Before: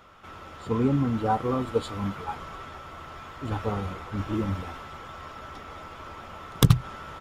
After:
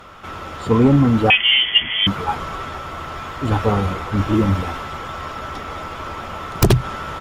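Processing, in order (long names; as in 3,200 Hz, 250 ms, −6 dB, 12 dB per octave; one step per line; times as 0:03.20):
sine wavefolder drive 12 dB, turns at −2.5 dBFS
0:01.30–0:02.07: voice inversion scrambler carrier 3,300 Hz
level −4 dB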